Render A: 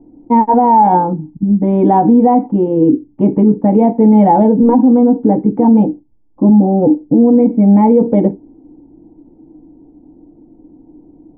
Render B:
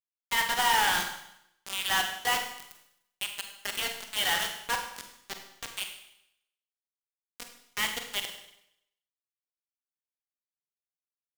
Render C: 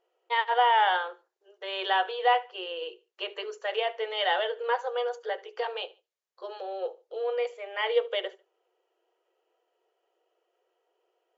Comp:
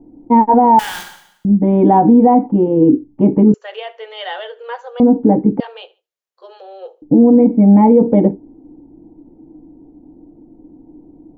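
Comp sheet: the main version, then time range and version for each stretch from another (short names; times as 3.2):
A
0.79–1.45 from B
3.54–5 from C
5.6–7.02 from C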